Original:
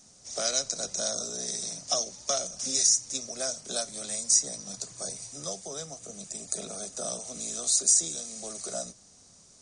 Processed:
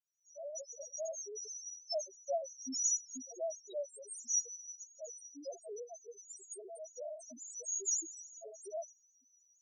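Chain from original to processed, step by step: opening faded in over 0.99 s; elliptic high-pass 250 Hz; loudest bins only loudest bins 1; gain +5 dB

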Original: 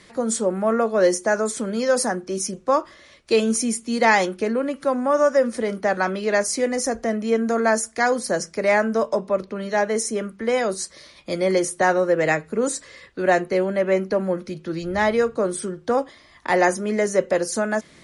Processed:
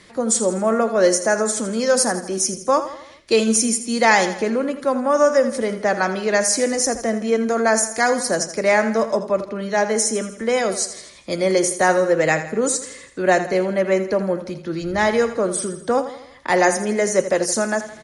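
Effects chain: dynamic EQ 6900 Hz, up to +6 dB, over -42 dBFS, Q 0.84; on a send: feedback echo 82 ms, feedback 50%, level -12 dB; on the sum: gain +1.5 dB

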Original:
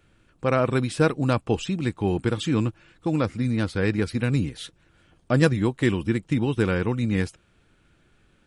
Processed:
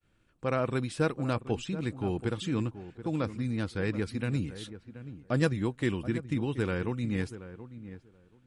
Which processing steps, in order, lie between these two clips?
expander -57 dBFS; darkening echo 0.729 s, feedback 16%, low-pass 1300 Hz, level -13 dB; gain -7.5 dB

